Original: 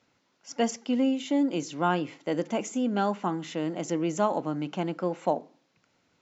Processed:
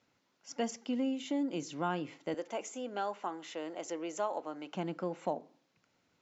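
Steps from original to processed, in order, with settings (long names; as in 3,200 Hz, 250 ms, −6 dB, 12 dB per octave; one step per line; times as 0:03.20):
0:02.34–0:04.75: Chebyshev high-pass filter 500 Hz, order 2
downward compressor 1.5 to 1, threshold −30 dBFS, peak gain reduction 4 dB
level −5 dB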